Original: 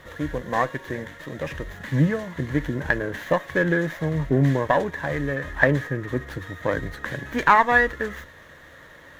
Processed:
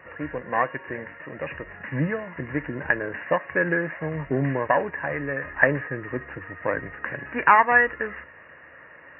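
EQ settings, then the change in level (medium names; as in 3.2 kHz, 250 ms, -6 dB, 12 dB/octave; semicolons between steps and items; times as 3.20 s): high-pass 65 Hz; brick-wall FIR low-pass 2.9 kHz; bass shelf 330 Hz -9 dB; +1.0 dB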